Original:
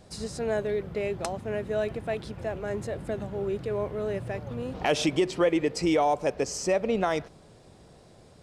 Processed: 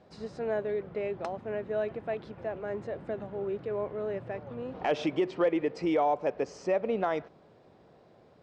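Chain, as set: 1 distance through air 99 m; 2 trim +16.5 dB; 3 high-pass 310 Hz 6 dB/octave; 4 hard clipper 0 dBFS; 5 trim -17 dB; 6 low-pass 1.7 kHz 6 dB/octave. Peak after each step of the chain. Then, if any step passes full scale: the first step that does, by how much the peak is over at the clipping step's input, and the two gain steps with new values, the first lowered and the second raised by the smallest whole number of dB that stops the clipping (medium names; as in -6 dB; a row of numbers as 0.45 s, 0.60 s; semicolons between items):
-13.0 dBFS, +3.5 dBFS, +4.0 dBFS, 0.0 dBFS, -17.0 dBFS, -17.5 dBFS; step 2, 4.0 dB; step 2 +12.5 dB, step 5 -13 dB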